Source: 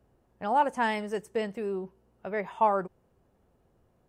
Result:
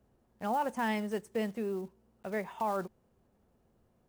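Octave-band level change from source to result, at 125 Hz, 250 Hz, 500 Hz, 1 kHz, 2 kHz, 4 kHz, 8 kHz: -0.5 dB, 0.0 dB, -5.0 dB, -7.5 dB, -5.0 dB, -4.0 dB, no reading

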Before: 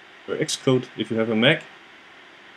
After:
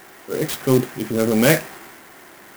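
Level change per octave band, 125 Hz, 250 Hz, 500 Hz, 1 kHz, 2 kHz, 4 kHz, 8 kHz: +4.0 dB, +4.0 dB, +3.0 dB, +3.5 dB, 0.0 dB, -5.0 dB, +5.0 dB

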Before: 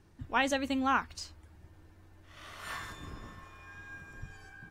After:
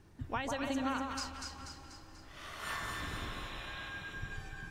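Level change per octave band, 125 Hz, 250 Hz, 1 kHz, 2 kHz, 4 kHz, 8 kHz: +2.5 dB, -3.5 dB, -5.5 dB, -3.5 dB, -1.0 dB, -0.5 dB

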